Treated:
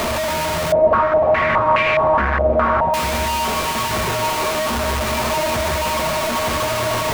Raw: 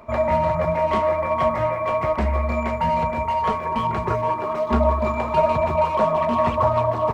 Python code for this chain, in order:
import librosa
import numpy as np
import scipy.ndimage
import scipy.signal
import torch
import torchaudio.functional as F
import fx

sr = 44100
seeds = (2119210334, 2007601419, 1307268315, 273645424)

y = np.sign(x) * np.sqrt(np.mean(np.square(x)))
y = y + 10.0 ** (-7.0 / 20.0) * np.pad(y, (int(835 * sr / 1000.0), 0))[:len(y)]
y = fx.filter_held_lowpass(y, sr, hz=4.8, low_hz=600.0, high_hz=2400.0, at=(0.72, 2.94))